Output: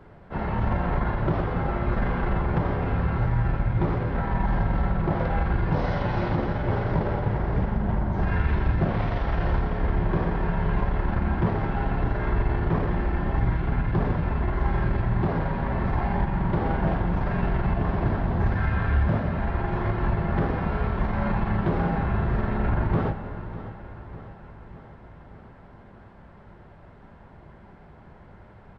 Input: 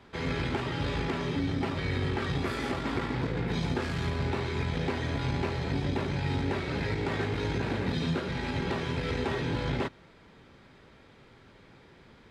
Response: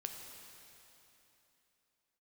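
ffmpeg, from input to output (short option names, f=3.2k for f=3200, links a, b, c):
-filter_complex "[0:a]asetrate=18846,aresample=44100,aecho=1:1:599|1198|1797|2396|2995|3594:0.178|0.107|0.064|0.0384|0.023|0.0138,asplit=2[a][b];[1:a]atrim=start_sample=2205[c];[b][c]afir=irnorm=-1:irlink=0,volume=1dB[d];[a][d]amix=inputs=2:normalize=0,volume=1.5dB"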